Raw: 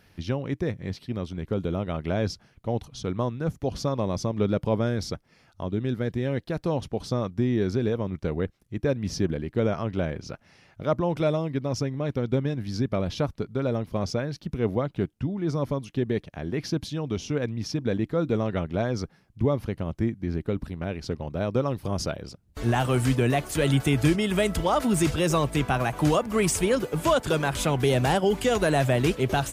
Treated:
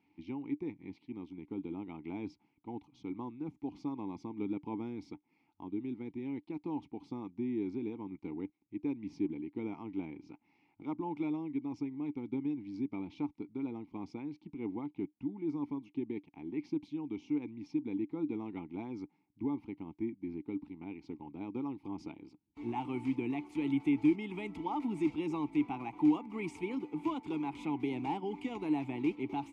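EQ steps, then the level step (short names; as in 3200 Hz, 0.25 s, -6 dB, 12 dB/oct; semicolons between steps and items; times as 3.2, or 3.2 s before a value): vowel filter u; 0.0 dB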